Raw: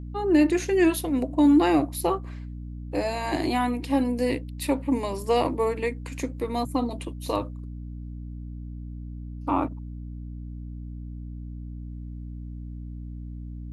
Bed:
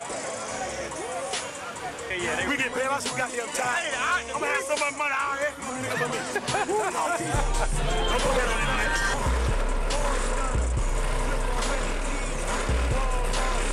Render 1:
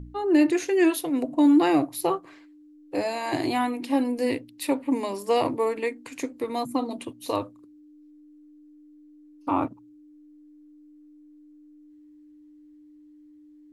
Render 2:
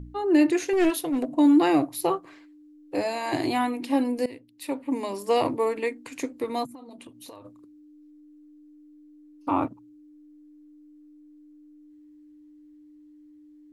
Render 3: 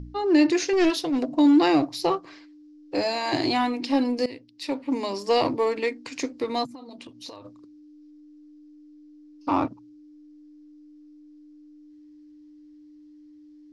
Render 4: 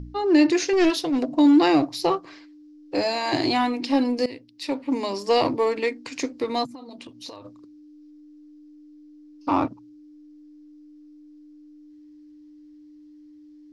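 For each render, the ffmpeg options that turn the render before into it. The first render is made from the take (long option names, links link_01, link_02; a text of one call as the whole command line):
ffmpeg -i in.wav -af "bandreject=frequency=60:width_type=h:width=4,bandreject=frequency=120:width_type=h:width=4,bandreject=frequency=180:width_type=h:width=4,bandreject=frequency=240:width_type=h:width=4" out.wav
ffmpeg -i in.wav -filter_complex "[0:a]asettb=1/sr,asplit=3[link_01][link_02][link_03];[link_01]atrim=end=0.734[link_04];[link_02]atrim=start=0.73:end=1.36,asetpts=PTS-STARTPTS,afade=type=in:duration=0.004:curve=qsin,afade=type=out:start_time=0.626:duration=0.004:curve=qsin,aeval=exprs='clip(val(0),-1,0.0794)':channel_layout=same[link_05];[link_03]atrim=start=1.356[link_06];[link_04][link_05]acrossfade=duration=0.004:curve1=hsin:curve2=qsin[link_07];[link_07][link_06]acrossfade=duration=0.004:curve1=qsin:curve2=hsin,asplit=3[link_08][link_09][link_10];[link_08]afade=type=out:start_time=6.65:duration=0.02[link_11];[link_09]acompressor=threshold=-41dB:ratio=8:attack=3.2:release=140:knee=1:detection=peak,afade=type=in:start_time=6.65:duration=0.02,afade=type=out:start_time=7.44:duration=0.02[link_12];[link_10]afade=type=in:start_time=7.44:duration=0.02[link_13];[link_11][link_12][link_13]amix=inputs=3:normalize=0,asplit=2[link_14][link_15];[link_14]atrim=end=4.26,asetpts=PTS-STARTPTS,afade=type=out:start_time=4.256:duration=0.004:curve=hsin:silence=0.125893[link_16];[link_15]atrim=start=4.26,asetpts=PTS-STARTPTS,afade=type=in:duration=0.98:silence=0.125893[link_17];[link_16][link_17]concat=n=2:v=0:a=1" out.wav
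ffmpeg -i in.wav -filter_complex "[0:a]asplit=2[link_01][link_02];[link_02]asoftclip=type=hard:threshold=-26dB,volume=-12dB[link_03];[link_01][link_03]amix=inputs=2:normalize=0,lowpass=frequency=5200:width_type=q:width=3.4" out.wav
ffmpeg -i in.wav -af "volume=1.5dB" out.wav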